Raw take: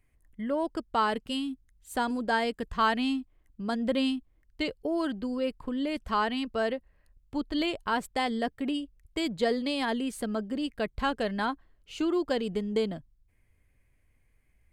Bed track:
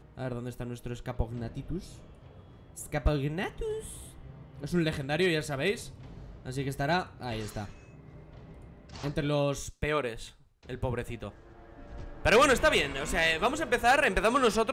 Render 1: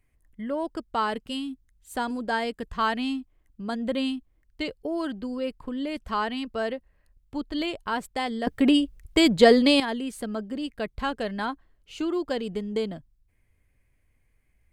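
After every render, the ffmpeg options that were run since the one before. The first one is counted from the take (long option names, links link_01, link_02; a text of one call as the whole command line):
ffmpeg -i in.wav -filter_complex "[0:a]asplit=3[link_01][link_02][link_03];[link_01]afade=type=out:start_time=3.61:duration=0.02[link_04];[link_02]asuperstop=centerf=5300:order=8:qfactor=6.4,afade=type=in:start_time=3.61:duration=0.02,afade=type=out:start_time=4.12:duration=0.02[link_05];[link_03]afade=type=in:start_time=4.12:duration=0.02[link_06];[link_04][link_05][link_06]amix=inputs=3:normalize=0,asplit=3[link_07][link_08][link_09];[link_07]atrim=end=8.472[link_10];[link_08]atrim=start=8.468:end=9.802,asetpts=PTS-STARTPTS,volume=11.5dB[link_11];[link_09]atrim=start=9.798[link_12];[link_10][link_11]acrossfade=duration=0.004:curve1=hsin:curve2=hsin[link_13];[link_13][link_12]acrossfade=duration=0.004:curve1=hsin:curve2=hsin" out.wav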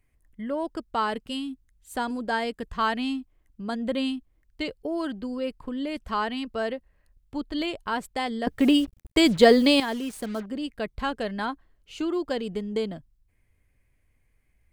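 ffmpeg -i in.wav -filter_complex "[0:a]asettb=1/sr,asplit=3[link_01][link_02][link_03];[link_01]atrim=end=8.594[link_04];[link_02]atrim=start=8.59:end=10.46,asetpts=PTS-STARTPTS,afade=type=in:duration=0.004:curve=qsin,afade=type=out:start_time=1.866:duration=0.004:curve=qsin,acrusher=bits=6:mix=0:aa=0.5[link_05];[link_03]atrim=start=10.456[link_06];[link_04][link_05]acrossfade=duration=0.004:curve1=hsin:curve2=qsin[link_07];[link_07][link_06]acrossfade=duration=0.004:curve1=qsin:curve2=hsin" out.wav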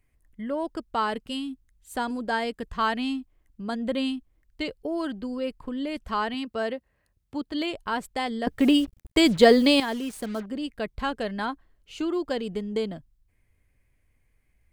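ffmpeg -i in.wav -filter_complex "[0:a]asettb=1/sr,asplit=3[link_01][link_02][link_03];[link_01]atrim=end=6.344[link_04];[link_02]atrim=start=6.34:end=7.71,asetpts=PTS-STARTPTS,afade=type=in:duration=0.004:curve=qsin,afade=type=out:start_time=1.366:duration=0.004:curve=qsin,highpass=77[link_05];[link_03]atrim=start=7.706[link_06];[link_04][link_05]acrossfade=duration=0.004:curve1=hsin:curve2=qsin[link_07];[link_07][link_06]acrossfade=duration=0.004:curve1=qsin:curve2=hsin" out.wav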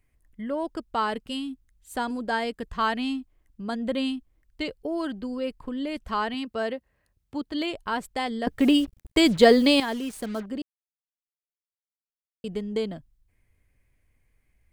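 ffmpeg -i in.wav -filter_complex "[0:a]asplit=3[link_01][link_02][link_03];[link_01]atrim=end=10.62,asetpts=PTS-STARTPTS,afade=type=out:start_time=10.616:duration=0.004:curve=hsin[link_04];[link_02]atrim=start=10.62:end=12.44,asetpts=PTS-STARTPTS,volume=0[link_05];[link_03]atrim=start=12.44,asetpts=PTS-STARTPTS,afade=type=in:duration=0.004:curve=hsin[link_06];[link_04][link_05][link_06]concat=n=3:v=0:a=1" out.wav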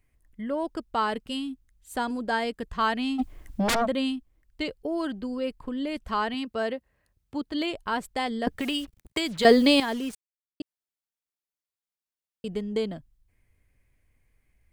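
ffmpeg -i in.wav -filter_complex "[0:a]asplit=3[link_01][link_02][link_03];[link_01]afade=type=out:start_time=3.18:duration=0.02[link_04];[link_02]aeval=exprs='0.0944*sin(PI/2*5.62*val(0)/0.0944)':channel_layout=same,afade=type=in:start_time=3.18:duration=0.02,afade=type=out:start_time=3.85:duration=0.02[link_05];[link_03]afade=type=in:start_time=3.85:duration=0.02[link_06];[link_04][link_05][link_06]amix=inputs=3:normalize=0,asettb=1/sr,asplit=3[link_07][link_08][link_09];[link_07]atrim=end=8.554[link_10];[link_08]atrim=start=8.55:end=9.45,asetpts=PTS-STARTPTS,afade=type=in:duration=0.004:curve=qsin,afade=type=out:start_time=0.896:duration=0.004:curve=qsin,acrossover=split=96|860[link_11][link_12][link_13];[link_11]acompressor=threshold=-52dB:ratio=4[link_14];[link_12]acompressor=threshold=-32dB:ratio=4[link_15];[link_13]acompressor=threshold=-28dB:ratio=4[link_16];[link_14][link_15][link_16]amix=inputs=3:normalize=0[link_17];[link_09]atrim=start=9.446[link_18];[link_10][link_17]acrossfade=duration=0.004:curve1=hsin:curve2=qsin[link_19];[link_19][link_18]acrossfade=duration=0.004:curve1=qsin:curve2=hsin,asplit=3[link_20][link_21][link_22];[link_20]atrim=end=10.15,asetpts=PTS-STARTPTS,afade=type=out:start_time=10.146:duration=0.004:curve=hsin[link_23];[link_21]atrim=start=10.15:end=10.6,asetpts=PTS-STARTPTS,volume=0[link_24];[link_22]atrim=start=10.6,asetpts=PTS-STARTPTS,afade=type=in:duration=0.004:curve=hsin[link_25];[link_23][link_24][link_25]concat=n=3:v=0:a=1" out.wav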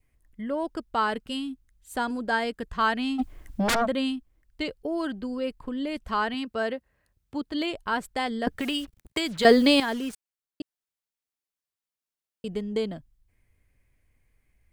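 ffmpeg -i in.wav -af "adynamicequalizer=threshold=0.00794:dfrequency=1500:dqfactor=3.5:tfrequency=1500:tqfactor=3.5:attack=5:release=100:ratio=0.375:range=2:mode=boostabove:tftype=bell" out.wav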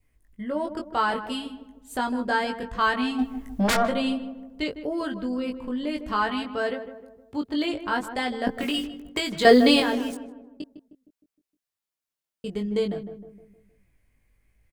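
ffmpeg -i in.wav -filter_complex "[0:a]asplit=2[link_01][link_02];[link_02]adelay=20,volume=-4.5dB[link_03];[link_01][link_03]amix=inputs=2:normalize=0,asplit=2[link_04][link_05];[link_05]adelay=155,lowpass=frequency=1100:poles=1,volume=-9.5dB,asplit=2[link_06][link_07];[link_07]adelay=155,lowpass=frequency=1100:poles=1,volume=0.5,asplit=2[link_08][link_09];[link_09]adelay=155,lowpass=frequency=1100:poles=1,volume=0.5,asplit=2[link_10][link_11];[link_11]adelay=155,lowpass=frequency=1100:poles=1,volume=0.5,asplit=2[link_12][link_13];[link_13]adelay=155,lowpass=frequency=1100:poles=1,volume=0.5,asplit=2[link_14][link_15];[link_15]adelay=155,lowpass=frequency=1100:poles=1,volume=0.5[link_16];[link_06][link_08][link_10][link_12][link_14][link_16]amix=inputs=6:normalize=0[link_17];[link_04][link_17]amix=inputs=2:normalize=0" out.wav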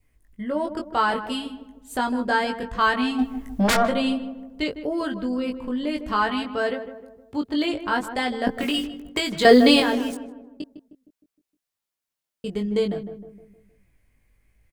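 ffmpeg -i in.wav -af "volume=2.5dB,alimiter=limit=-2dB:level=0:latency=1" out.wav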